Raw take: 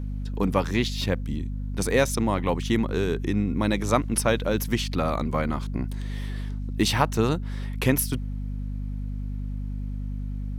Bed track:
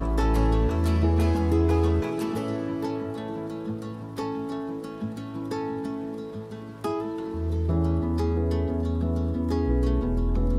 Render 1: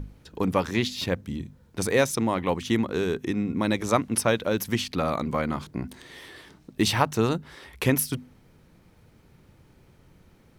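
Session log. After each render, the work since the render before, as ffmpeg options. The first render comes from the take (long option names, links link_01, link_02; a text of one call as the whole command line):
ffmpeg -i in.wav -af "bandreject=frequency=50:width_type=h:width=6,bandreject=frequency=100:width_type=h:width=6,bandreject=frequency=150:width_type=h:width=6,bandreject=frequency=200:width_type=h:width=6,bandreject=frequency=250:width_type=h:width=6" out.wav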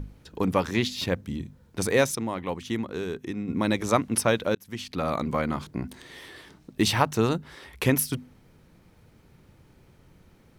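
ffmpeg -i in.wav -filter_complex "[0:a]asplit=4[link_01][link_02][link_03][link_04];[link_01]atrim=end=2.152[link_05];[link_02]atrim=start=2.148:end=3.482,asetpts=PTS-STARTPTS,volume=-5.5dB[link_06];[link_03]atrim=start=3.478:end=4.55,asetpts=PTS-STARTPTS,afade=type=out:start_time=1.068:duration=0.004:curve=hsin[link_07];[link_04]atrim=start=4.55,asetpts=PTS-STARTPTS,afade=type=in:duration=0.61[link_08];[link_05][link_06]acrossfade=duration=0.004:curve1=hsin:curve2=hsin[link_09];[link_07][link_08]concat=n=2:v=0:a=1[link_10];[link_09][link_10]acrossfade=duration=0.004:curve1=hsin:curve2=hsin" out.wav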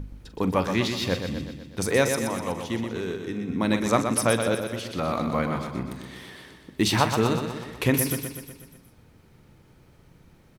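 ffmpeg -i in.wav -filter_complex "[0:a]asplit=2[link_01][link_02];[link_02]adelay=43,volume=-13.5dB[link_03];[link_01][link_03]amix=inputs=2:normalize=0,asplit=2[link_04][link_05];[link_05]aecho=0:1:123|246|369|492|615|738|861:0.447|0.255|0.145|0.0827|0.0472|0.0269|0.0153[link_06];[link_04][link_06]amix=inputs=2:normalize=0" out.wav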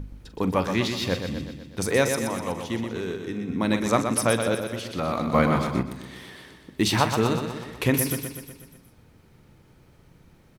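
ffmpeg -i in.wav -filter_complex "[0:a]asplit=3[link_01][link_02][link_03];[link_01]afade=type=out:start_time=5.33:duration=0.02[link_04];[link_02]acontrast=57,afade=type=in:start_time=5.33:duration=0.02,afade=type=out:start_time=5.81:duration=0.02[link_05];[link_03]afade=type=in:start_time=5.81:duration=0.02[link_06];[link_04][link_05][link_06]amix=inputs=3:normalize=0" out.wav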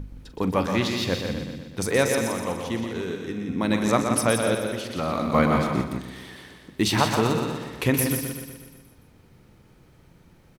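ffmpeg -i in.wav -af "aecho=1:1:170:0.422" out.wav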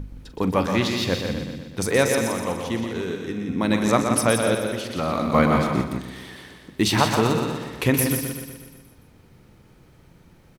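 ffmpeg -i in.wav -af "volume=2dB" out.wav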